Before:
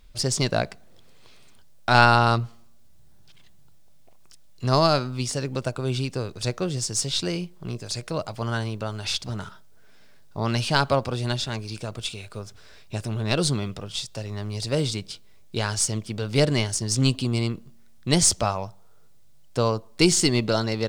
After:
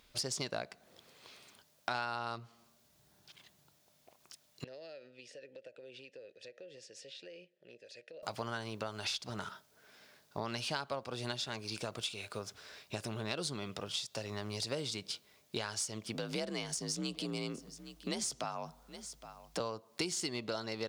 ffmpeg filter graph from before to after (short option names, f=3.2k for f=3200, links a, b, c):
-filter_complex "[0:a]asettb=1/sr,asplit=3[a][b][c];[a]atrim=end=4.644[d];[b]atrim=start=4.64:end=8.23,asetpts=PTS-STARTPTS,afade=t=in:d=0.004:c=qsin,afade=t=out:st=3.586:d=0.004:c=qsin,asplit=3[e][f][g];[e]bandpass=f=530:t=q:w=8,volume=0dB[h];[f]bandpass=f=1.84k:t=q:w=8,volume=-6dB[i];[g]bandpass=f=2.48k:t=q:w=8,volume=-9dB[j];[h][i][j]amix=inputs=3:normalize=0,equalizer=f=890:t=o:w=2.1:g=-7.5,acompressor=threshold=-45dB:ratio=6:attack=3.2:release=140:knee=1:detection=peak[k];[c]atrim=start=8.226[l];[d][k]acrossfade=d=0.004:c1=hsin:c2=qsin[m];[m][l]acrossfade=d=0.004:c1=qsin:c2=hsin,asettb=1/sr,asplit=3[n][o][p];[n]atrim=end=16.144[q];[o]atrim=start=16.14:end=19.6,asetpts=PTS-STARTPTS,afade=t=in:d=0.004:c=qsin,afade=t=out:st=3.456:d=0.004:c=qsin,acompressor=threshold=-28dB:ratio=1.5:attack=3.2:release=140:knee=1:detection=peak,afreqshift=50,aecho=1:1:816:0.0794,atrim=end_sample=152586[r];[p]atrim=start=19.596[s];[q][r]acrossfade=d=0.004:c1=hsin:c2=qsin[t];[t][s]acrossfade=d=0.004:c1=qsin:c2=hsin,highpass=f=380:p=1,equalizer=f=8.3k:w=4.3:g=-3.5,acompressor=threshold=-35dB:ratio=6"